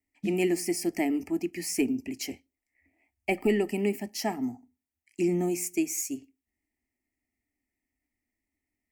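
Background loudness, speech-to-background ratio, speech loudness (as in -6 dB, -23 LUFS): -40.0 LUFS, 10.5 dB, -29.5 LUFS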